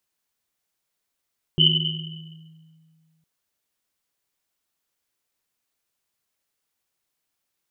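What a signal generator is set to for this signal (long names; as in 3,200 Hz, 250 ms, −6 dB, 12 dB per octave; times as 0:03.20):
drum after Risset length 1.66 s, pitch 160 Hz, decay 2.23 s, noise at 3,000 Hz, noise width 180 Hz, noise 60%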